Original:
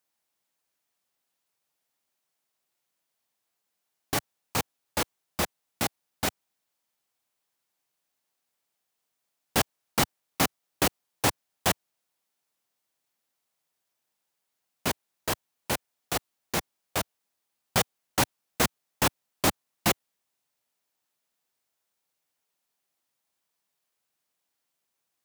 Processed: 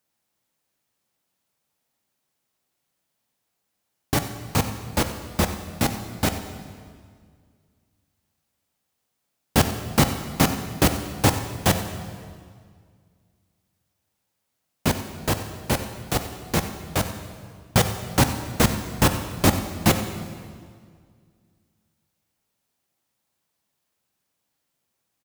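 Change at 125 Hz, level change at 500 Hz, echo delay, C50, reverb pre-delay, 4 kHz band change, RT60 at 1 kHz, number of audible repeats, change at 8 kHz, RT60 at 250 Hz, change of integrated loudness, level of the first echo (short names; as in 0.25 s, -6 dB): +13.0 dB, +6.0 dB, 92 ms, 8.0 dB, 3 ms, +3.5 dB, 1.9 s, 1, +3.0 dB, 2.2 s, +5.5 dB, -15.0 dB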